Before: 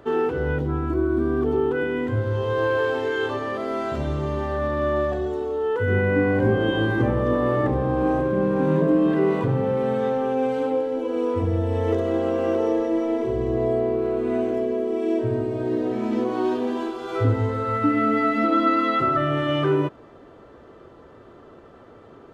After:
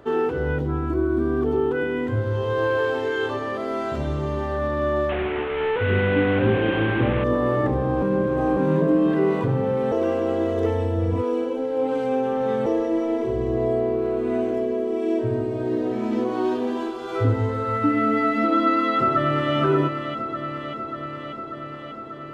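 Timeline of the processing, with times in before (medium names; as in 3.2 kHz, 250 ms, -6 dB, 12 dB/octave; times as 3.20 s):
5.09–7.24 s: one-bit delta coder 16 kbps, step -21.5 dBFS
8.02–8.57 s: reverse
9.92–12.66 s: reverse
18.37–19.55 s: echo throw 590 ms, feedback 75%, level -8 dB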